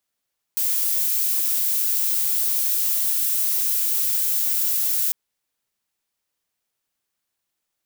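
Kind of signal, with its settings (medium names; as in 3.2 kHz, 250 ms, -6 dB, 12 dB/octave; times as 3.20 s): noise violet, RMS -21.5 dBFS 4.55 s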